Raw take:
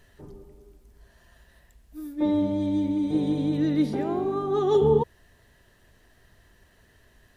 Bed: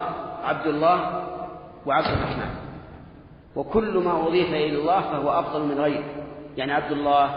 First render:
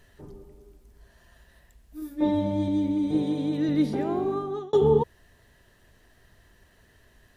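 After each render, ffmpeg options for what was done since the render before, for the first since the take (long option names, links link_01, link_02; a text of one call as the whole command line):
ffmpeg -i in.wav -filter_complex "[0:a]asettb=1/sr,asplit=3[link_01][link_02][link_03];[link_01]atrim=end=2.004[link_04];[link_02]atrim=start=2:end=2.68,asetpts=PTS-STARTPTS,afade=type=in:duration=0.004:curve=qsin,afade=type=out:start_time=0.676:duration=0.004:curve=qsin,asplit=2[link_05][link_06];[link_06]adelay=19,volume=-4dB[link_07];[link_05][link_07]amix=inputs=2:normalize=0,atrim=end_sample=29988[link_08];[link_03]atrim=start=2.676[link_09];[link_04][link_08]acrossfade=duration=0.004:curve1=hsin:curve2=qsin[link_10];[link_10][link_09]acrossfade=duration=0.004:curve1=qsin:curve2=hsin,asettb=1/sr,asplit=3[link_11][link_12][link_13];[link_11]atrim=end=3.224[link_14];[link_12]atrim=start=3.22:end=3.69,asetpts=PTS-STARTPTS,afade=type=in:duration=0.004:curve=qsin,afade=type=out:start_time=0.466:duration=0.004:curve=qsin,highpass=frequency=200:poles=1[link_15];[link_13]atrim=start=3.686[link_16];[link_14][link_15]acrossfade=duration=0.004:curve1=hsin:curve2=qsin[link_17];[link_17][link_16]acrossfade=duration=0.004:curve1=qsin:curve2=hsin,asplit=2[link_18][link_19];[link_18]atrim=end=4.73,asetpts=PTS-STARTPTS,afade=type=out:start_time=4.32:duration=0.41[link_20];[link_19]atrim=start=4.73,asetpts=PTS-STARTPTS,afade=type=in:duration=0.004:curve=hsin[link_21];[link_20][link_21]concat=n=2:v=0:a=1" out.wav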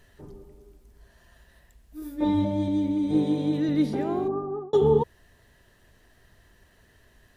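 ffmpeg -i in.wav -filter_complex "[0:a]asettb=1/sr,asplit=3[link_01][link_02][link_03];[link_01]atrim=end=2.004[link_04];[link_02]atrim=start=2:end=2.45,asetpts=PTS-STARTPTS,afade=type=in:duration=0.004:curve=qsin,afade=type=out:start_time=0.446:duration=0.004:curve=qsin,asplit=2[link_05][link_06];[link_06]adelay=21,volume=-3dB[link_07];[link_05][link_07]amix=inputs=2:normalize=0,atrim=end_sample=19845[link_08];[link_03]atrim=start=2.446[link_09];[link_04][link_08]acrossfade=duration=0.004:curve1=hsin:curve2=qsin[link_10];[link_10][link_09]acrossfade=duration=0.004:curve1=qsin:curve2=hsin,asettb=1/sr,asplit=3[link_11][link_12][link_13];[link_11]atrim=end=3.074[link_14];[link_12]atrim=start=3.07:end=3.6,asetpts=PTS-STARTPTS,afade=type=in:duration=0.004:curve=qsin,afade=type=out:start_time=0.526:duration=0.004:curve=qsin,asplit=2[link_15][link_16];[link_16]adelay=20,volume=-7dB[link_17];[link_15][link_17]amix=inputs=2:normalize=0,atrim=end_sample=23373[link_18];[link_13]atrim=start=3.596[link_19];[link_14][link_18]acrossfade=duration=0.004:curve1=hsin:curve2=qsin[link_20];[link_20][link_19]acrossfade=duration=0.004:curve1=qsin:curve2=hsin,asplit=3[link_21][link_22][link_23];[link_21]afade=type=out:start_time=4.27:duration=0.02[link_24];[link_22]lowpass=frequency=1200:width=0.5412,lowpass=frequency=1200:width=1.3066,afade=type=in:start_time=4.27:duration=0.02,afade=type=out:start_time=4.72:duration=0.02[link_25];[link_23]afade=type=in:start_time=4.72:duration=0.02[link_26];[link_24][link_25][link_26]amix=inputs=3:normalize=0" out.wav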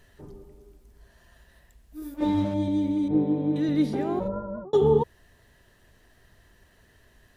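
ffmpeg -i in.wav -filter_complex "[0:a]asettb=1/sr,asplit=3[link_01][link_02][link_03];[link_01]atrim=end=2.144[link_04];[link_02]atrim=start=2.14:end=2.54,asetpts=PTS-STARTPTS,afade=type=in:duration=0.004:curve=qsin,afade=type=out:start_time=0.396:duration=0.004:curve=qsin,aeval=exprs='sgn(val(0))*max(abs(val(0))-0.00794,0)':channel_layout=same[link_05];[link_03]atrim=start=2.536[link_06];[link_04][link_05]acrossfade=duration=0.004:curve1=hsin:curve2=qsin[link_07];[link_07][link_06]acrossfade=duration=0.004:curve1=qsin:curve2=hsin,asettb=1/sr,asplit=3[link_08][link_09][link_10];[link_08]atrim=end=3.084[link_11];[link_09]atrim=start=3.08:end=3.56,asetpts=PTS-STARTPTS,afade=type=in:duration=0.004:curve=qsin,afade=type=out:start_time=0.476:duration=0.004:curve=qsin,lowpass=1400[link_12];[link_10]atrim=start=3.556[link_13];[link_11][link_12]acrossfade=duration=0.004:curve1=hsin:curve2=qsin[link_14];[link_14][link_13]acrossfade=duration=0.004:curve1=qsin:curve2=hsin,asplit=3[link_15][link_16][link_17];[link_15]afade=type=out:start_time=4.19:duration=0.02[link_18];[link_16]aeval=exprs='val(0)*sin(2*PI*190*n/s)':channel_layout=same,afade=type=in:start_time=4.19:duration=0.02,afade=type=out:start_time=4.64:duration=0.02[link_19];[link_17]afade=type=in:start_time=4.64:duration=0.02[link_20];[link_18][link_19][link_20]amix=inputs=3:normalize=0" out.wav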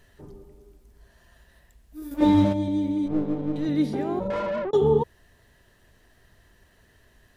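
ffmpeg -i in.wav -filter_complex "[0:a]asettb=1/sr,asplit=3[link_01][link_02][link_03];[link_01]atrim=end=2.114[link_04];[link_02]atrim=start=2.11:end=2.53,asetpts=PTS-STARTPTS,afade=type=in:duration=0.004:curve=qsin,afade=type=out:start_time=0.416:duration=0.004:curve=qsin,acontrast=68[link_05];[link_03]atrim=start=2.526[link_06];[link_04][link_05]acrossfade=duration=0.004:curve1=hsin:curve2=qsin[link_07];[link_07][link_06]acrossfade=duration=0.004:curve1=qsin:curve2=hsin,asettb=1/sr,asplit=3[link_08][link_09][link_10];[link_08]atrim=end=3.064[link_11];[link_09]atrim=start=3.06:end=3.66,asetpts=PTS-STARTPTS,afade=type=in:duration=0.004:curve=qsin,afade=type=out:start_time=0.596:duration=0.004:curve=qsin,aeval=exprs='if(lt(val(0),0),0.447*val(0),val(0))':channel_layout=same[link_12];[link_10]atrim=start=3.656[link_13];[link_11][link_12]acrossfade=duration=0.004:curve1=hsin:curve2=qsin[link_14];[link_14][link_13]acrossfade=duration=0.004:curve1=qsin:curve2=hsin,asettb=1/sr,asplit=3[link_15][link_16][link_17];[link_15]atrim=end=4.304[link_18];[link_16]atrim=start=4.3:end=4.71,asetpts=PTS-STARTPTS,afade=type=in:duration=0.004:curve=qsin,afade=type=out:start_time=0.406:duration=0.004:curve=qsin,asplit=2[link_19][link_20];[link_20]highpass=frequency=720:poles=1,volume=29dB,asoftclip=type=tanh:threshold=-20dB[link_21];[link_19][link_21]amix=inputs=2:normalize=0,lowpass=frequency=1400:poles=1,volume=-6dB[link_22];[link_17]atrim=start=4.706[link_23];[link_18][link_22]acrossfade=duration=0.004:curve1=hsin:curve2=qsin[link_24];[link_24][link_23]acrossfade=duration=0.004:curve1=qsin:curve2=hsin" out.wav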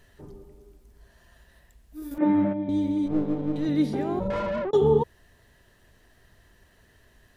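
ffmpeg -i in.wav -filter_complex "[0:a]asettb=1/sr,asplit=3[link_01][link_02][link_03];[link_01]atrim=end=2.184[link_04];[link_02]atrim=start=2.18:end=2.69,asetpts=PTS-STARTPTS,afade=type=in:duration=0.004:curve=qsin,afade=type=out:start_time=0.506:duration=0.004:curve=qsin,highpass=frequency=140:width=0.5412,highpass=frequency=140:width=1.3066,equalizer=frequency=250:width_type=q:width=4:gain=-7,equalizer=frequency=480:width_type=q:width=4:gain=-9,equalizer=frequency=1000:width_type=q:width=4:gain=-8,lowpass=frequency=2000:width=0.5412,lowpass=frequency=2000:width=1.3066[link_05];[link_03]atrim=start=2.686[link_06];[link_04][link_05]acrossfade=duration=0.004:curve1=hsin:curve2=qsin[link_07];[link_07][link_06]acrossfade=duration=0.004:curve1=qsin:curve2=hsin,asettb=1/sr,asplit=3[link_08][link_09][link_10];[link_08]atrim=end=3.864[link_11];[link_09]atrim=start=3.86:end=4.61,asetpts=PTS-STARTPTS,afade=type=in:duration=0.004:curve=qsin,afade=type=out:start_time=0.746:duration=0.004:curve=qsin,asubboost=boost=7.5:cutoff=210[link_12];[link_10]atrim=start=4.606[link_13];[link_11][link_12]acrossfade=duration=0.004:curve1=hsin:curve2=qsin[link_14];[link_14][link_13]acrossfade=duration=0.004:curve1=qsin:curve2=hsin" out.wav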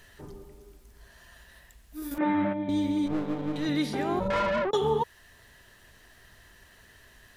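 ffmpeg -i in.wav -filter_complex "[0:a]acrossover=split=920[link_01][link_02];[link_01]alimiter=limit=-21dB:level=0:latency=1:release=435[link_03];[link_02]acontrast=82[link_04];[link_03][link_04]amix=inputs=2:normalize=0" out.wav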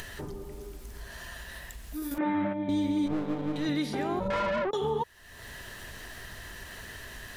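ffmpeg -i in.wav -af "acompressor=mode=upward:threshold=-31dB:ratio=2.5,alimiter=limit=-21dB:level=0:latency=1:release=172" out.wav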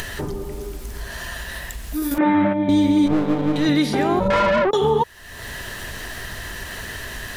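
ffmpeg -i in.wav -af "volume=11.5dB" out.wav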